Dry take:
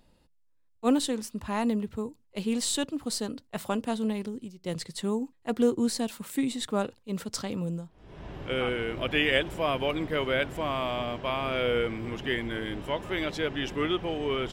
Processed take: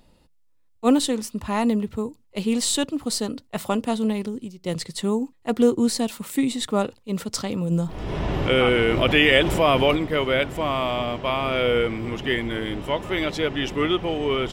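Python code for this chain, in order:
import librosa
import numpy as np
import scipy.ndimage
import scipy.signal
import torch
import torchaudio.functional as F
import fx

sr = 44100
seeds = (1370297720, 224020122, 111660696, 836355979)

y = fx.notch(x, sr, hz=1600.0, q=13.0)
y = fx.env_flatten(y, sr, amount_pct=50, at=(7.7, 9.95), fade=0.02)
y = y * librosa.db_to_amplitude(6.0)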